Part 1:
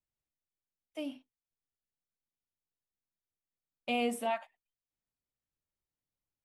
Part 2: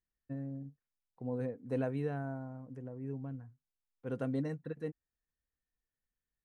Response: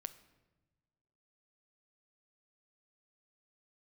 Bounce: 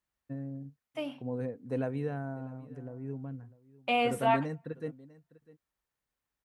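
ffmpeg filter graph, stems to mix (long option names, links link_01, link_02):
-filter_complex "[0:a]equalizer=frequency=1200:width=0.51:gain=12.5,volume=-4dB,asplit=2[link_01][link_02];[link_02]volume=-12.5dB[link_03];[1:a]volume=1.5dB,asplit=2[link_04][link_05];[link_05]volume=-20.5dB[link_06];[2:a]atrim=start_sample=2205[link_07];[link_03][link_07]afir=irnorm=-1:irlink=0[link_08];[link_06]aecho=0:1:650:1[link_09];[link_01][link_04][link_08][link_09]amix=inputs=4:normalize=0,highpass=42"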